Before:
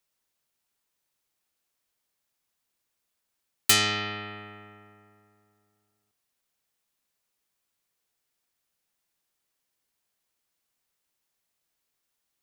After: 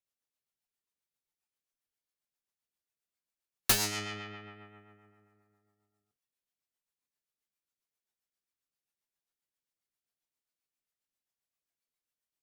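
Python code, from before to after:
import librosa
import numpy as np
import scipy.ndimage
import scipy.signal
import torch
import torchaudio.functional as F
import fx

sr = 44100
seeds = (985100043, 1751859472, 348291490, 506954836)

y = fx.self_delay(x, sr, depth_ms=0.54)
y = fx.rotary(y, sr, hz=7.5)
y = fx.noise_reduce_blind(y, sr, reduce_db=8)
y = y * 10.0 ** (-2.5 / 20.0)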